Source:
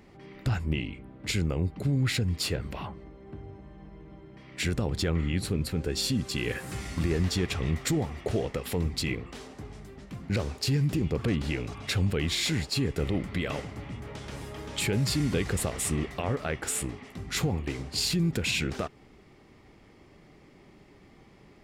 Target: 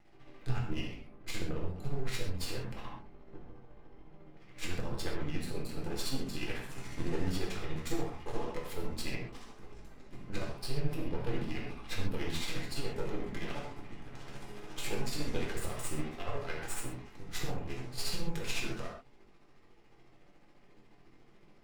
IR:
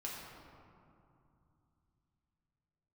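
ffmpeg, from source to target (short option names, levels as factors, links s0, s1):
-filter_complex "[0:a]asettb=1/sr,asplit=3[s0][s1][s2];[s0]atrim=end=10.474[s3];[s1]atrim=start=10.47:end=12.52,asetpts=PTS-STARTPTS,afade=t=in:d=0.004:c=qsin,afade=t=out:st=2.046:d=0.004:c=qsin,equalizer=f=6800:t=o:w=0.4:g=-12[s4];[s2]atrim=start=12.516[s5];[s3][s4]acrossfade=d=0.004:c1=hsin:c2=qsin[s6];[s6][s5]acrossfade=d=0.004:c1=qsin:c2=hsin,aeval=exprs='max(val(0),0)':c=same,flanger=delay=20:depth=3.8:speed=0.93,tremolo=f=14:d=0.65[s7];[1:a]atrim=start_sample=2205,atrim=end_sample=6174[s8];[s7][s8]afir=irnorm=-1:irlink=0,volume=1.5"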